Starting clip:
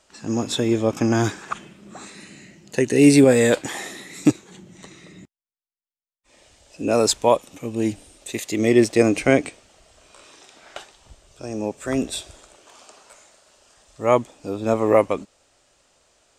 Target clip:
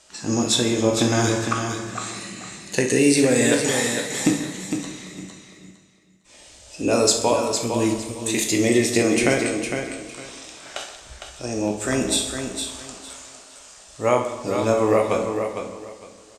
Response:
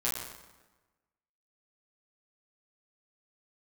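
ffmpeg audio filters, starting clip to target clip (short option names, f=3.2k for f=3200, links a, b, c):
-filter_complex "[0:a]lowpass=11k,highshelf=f=3.2k:g=9,acompressor=threshold=-18dB:ratio=4,aecho=1:1:457|914|1371:0.447|0.0983|0.0216,asplit=2[a][b];[1:a]atrim=start_sample=2205,adelay=16[c];[b][c]afir=irnorm=-1:irlink=0,volume=-9dB[d];[a][d]amix=inputs=2:normalize=0,volume=1.5dB"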